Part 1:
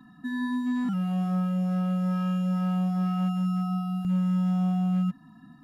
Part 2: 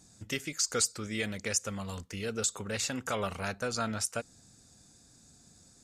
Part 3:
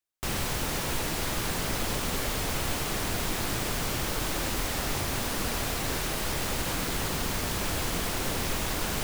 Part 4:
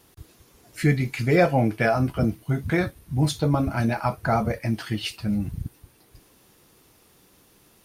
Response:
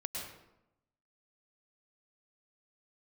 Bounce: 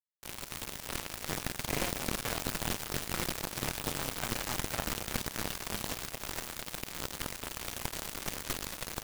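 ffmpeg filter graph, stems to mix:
-filter_complex "[0:a]acompressor=threshold=0.0282:ratio=6,adelay=950,volume=0.188[s0];[2:a]volume=0.708,asplit=2[s1][s2];[s2]volume=0.422[s3];[3:a]bandreject=f=60:t=h:w=6,bandreject=f=120:t=h:w=6,bandreject=f=180:t=h:w=6,bandreject=f=240:t=h:w=6,bandreject=f=300:t=h:w=6,bandreject=f=360:t=h:w=6,acompressor=threshold=0.0794:ratio=6,adelay=450,volume=0.299[s4];[s3]aecho=0:1:240|480|720|960|1200|1440|1680:1|0.47|0.221|0.104|0.0488|0.0229|0.0108[s5];[s0][s1][s4][s5]amix=inputs=4:normalize=0,acrusher=bits=3:mix=0:aa=0.5"

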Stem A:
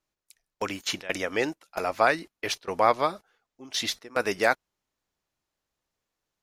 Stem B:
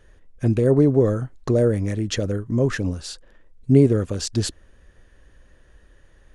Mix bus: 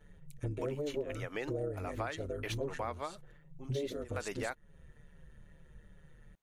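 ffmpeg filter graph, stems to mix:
-filter_complex "[0:a]volume=0.562[s0];[1:a]aecho=1:1:2.2:0.83,tremolo=f=150:d=0.75,asplit=2[s1][s2];[s2]adelay=6.4,afreqshift=-2.4[s3];[s1][s3]amix=inputs=2:normalize=1,volume=0.668[s4];[s0][s4]amix=inputs=2:normalize=0,equalizer=f=5100:t=o:w=0.39:g=-9.5,acompressor=threshold=0.0178:ratio=5"

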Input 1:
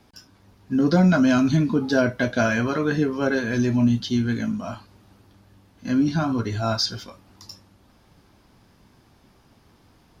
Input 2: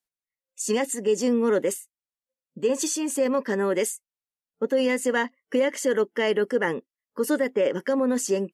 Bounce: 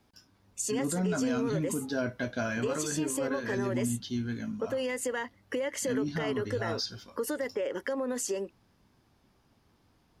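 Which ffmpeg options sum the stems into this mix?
-filter_complex "[0:a]volume=0.299[s0];[1:a]highpass=320,alimiter=limit=0.119:level=0:latency=1:release=57,acompressor=threshold=0.0178:ratio=3,volume=1.41[s1];[s0][s1]amix=inputs=2:normalize=0,alimiter=limit=0.0841:level=0:latency=1:release=70"

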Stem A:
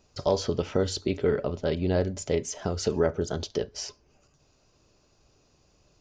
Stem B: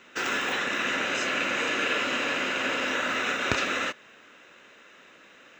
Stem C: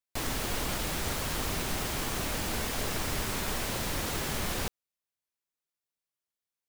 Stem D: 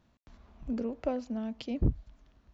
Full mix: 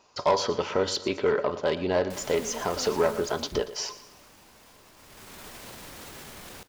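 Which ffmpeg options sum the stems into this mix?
-filter_complex "[0:a]equalizer=f=990:w=3.8:g=10,asplit=2[s0][s1];[s1]highpass=f=720:p=1,volume=5.62,asoftclip=type=tanh:threshold=0.355[s2];[s0][s2]amix=inputs=2:normalize=0,lowpass=f=4100:p=1,volume=0.501,volume=0.75,asplit=2[s3][s4];[s4]volume=0.168[s5];[2:a]alimiter=level_in=1.5:limit=0.0631:level=0:latency=1:release=31,volume=0.668,adelay=1950,volume=2.11,afade=t=out:st=3.01:d=0.63:silence=0.237137,afade=t=in:st=4.97:d=0.49:silence=0.266073,asplit=2[s6][s7];[s7]volume=0.133[s8];[3:a]adelay=1700,volume=0.398[s9];[s5][s8]amix=inputs=2:normalize=0,aecho=0:1:117|234|351|468|585|702:1|0.45|0.202|0.0911|0.041|0.0185[s10];[s3][s6][s9][s10]amix=inputs=4:normalize=0,lowshelf=f=100:g=-8.5"

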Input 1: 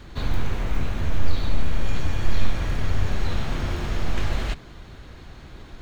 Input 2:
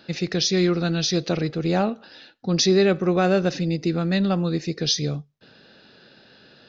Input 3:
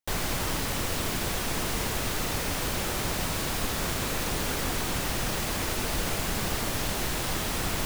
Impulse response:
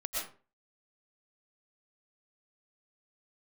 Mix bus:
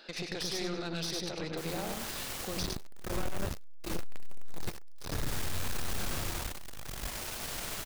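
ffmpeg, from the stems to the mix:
-filter_complex "[0:a]lowpass=f=1800:w=0.5412,lowpass=f=1800:w=1.3066,alimiter=limit=0.15:level=0:latency=1:release=24,adelay=2450,volume=0.668,asplit=2[s0][s1];[s1]volume=0.562[s2];[1:a]highshelf=f=2200:g=-3.5,acompressor=threshold=0.0794:ratio=6,volume=1.26,asplit=3[s3][s4][s5];[s4]volume=0.282[s6];[2:a]adelay=1500,volume=0.355,asplit=2[s7][s8];[s8]volume=0.708[s9];[s5]apad=whole_len=364276[s10];[s0][s10]sidechaingate=range=0.0224:threshold=0.0158:ratio=16:detection=peak[s11];[s3][s7]amix=inputs=2:normalize=0,highpass=450,alimiter=level_in=1.19:limit=0.0631:level=0:latency=1:release=280,volume=0.841,volume=1[s12];[s2][s6][s9]amix=inputs=3:normalize=0,aecho=0:1:99|198|297|396|495:1|0.33|0.109|0.0359|0.0119[s13];[s11][s12][s13]amix=inputs=3:normalize=0,highshelf=f=2300:g=4.5,aeval=exprs='(tanh(31.6*val(0)+0.7)-tanh(0.7))/31.6':c=same"

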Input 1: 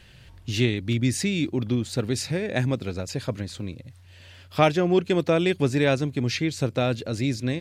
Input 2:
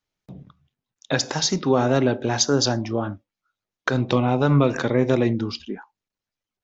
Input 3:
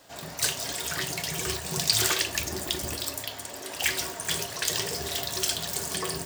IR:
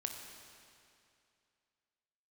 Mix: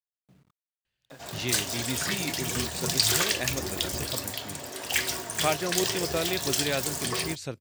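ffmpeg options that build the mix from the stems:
-filter_complex "[0:a]agate=range=0.0631:threshold=0.00891:ratio=16:detection=peak,lowshelf=f=460:g=-8.5,adelay=850,volume=0.596[s0];[1:a]lowpass=3200,acompressor=threshold=0.0501:ratio=6,acrusher=bits=7:mix=0:aa=0.000001,volume=0.106[s1];[2:a]adelay=1100,volume=1[s2];[s0][s1][s2]amix=inputs=3:normalize=0"

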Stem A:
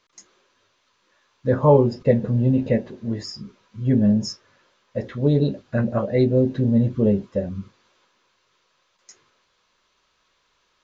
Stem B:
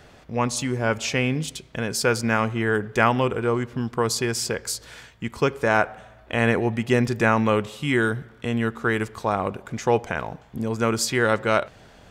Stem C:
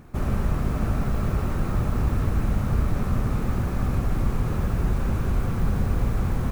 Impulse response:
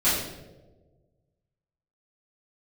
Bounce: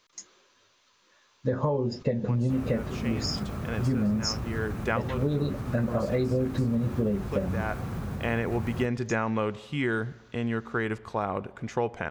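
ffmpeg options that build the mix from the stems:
-filter_complex "[0:a]highshelf=f=4600:g=6.5,acompressor=threshold=0.141:ratio=6,volume=0.944,asplit=2[s0][s1];[1:a]aemphasis=mode=reproduction:type=50fm,adelay=1900,volume=0.596[s2];[2:a]highpass=80,alimiter=limit=0.112:level=0:latency=1:release=108,adelay=2350,volume=0.531[s3];[s1]apad=whole_len=617639[s4];[s2][s4]sidechaincompress=threshold=0.0224:ratio=4:attack=16:release=745[s5];[s0][s5][s3]amix=inputs=3:normalize=0,acompressor=threshold=0.0708:ratio=4"

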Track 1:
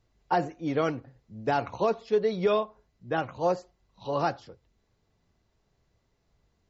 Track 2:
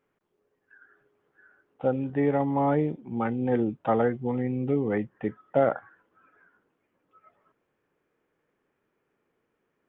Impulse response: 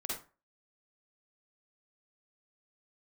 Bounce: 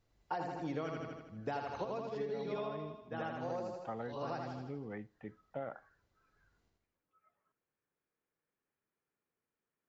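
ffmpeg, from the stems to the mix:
-filter_complex "[0:a]bandreject=f=60:t=h:w=6,bandreject=f=120:t=h:w=6,bandreject=f=180:t=h:w=6,bandreject=f=240:t=h:w=6,bandreject=f=300:t=h:w=6,bandreject=f=360:t=h:w=6,bandreject=f=420:t=h:w=6,volume=0.562,asplit=2[s0][s1];[s1]volume=0.596[s2];[1:a]equalizer=f=380:t=o:w=1.6:g=-5,volume=0.188,asplit=3[s3][s4][s5];[s4]volume=0.0708[s6];[s5]apad=whole_len=295330[s7];[s0][s7]sidechaincompress=threshold=0.00316:ratio=8:attack=16:release=999[s8];[2:a]atrim=start_sample=2205[s9];[s6][s9]afir=irnorm=-1:irlink=0[s10];[s2]aecho=0:1:80|160|240|320|400|480|560|640:1|0.53|0.281|0.149|0.0789|0.0418|0.0222|0.0117[s11];[s8][s3][s10][s11]amix=inputs=4:normalize=0,acompressor=threshold=0.0158:ratio=5"

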